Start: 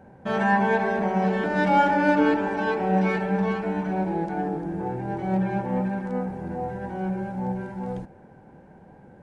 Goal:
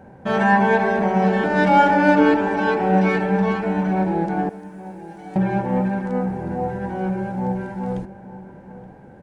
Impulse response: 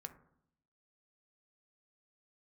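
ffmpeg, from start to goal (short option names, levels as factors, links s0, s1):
-filter_complex "[0:a]asettb=1/sr,asplit=3[s0][s1][s2];[s0]atrim=end=4.494[s3];[s1]atrim=start=4.49:end=5.36,asetpts=PTS-STARTPTS,afade=t=in:d=0.004:c=qsin,afade=t=out:st=0.866:d=0.004:c=qsin,aderivative[s4];[s2]atrim=start=5.356[s5];[s3][s4]acrossfade=d=0.004:c1=hsin:c2=qsin[s6];[s6][s5]acrossfade=d=0.004:c1=qsin:c2=hsin,asplit=2[s7][s8];[s8]adelay=874.6,volume=0.178,highshelf=f=4000:g=-19.7[s9];[s7][s9]amix=inputs=2:normalize=0,volume=1.78"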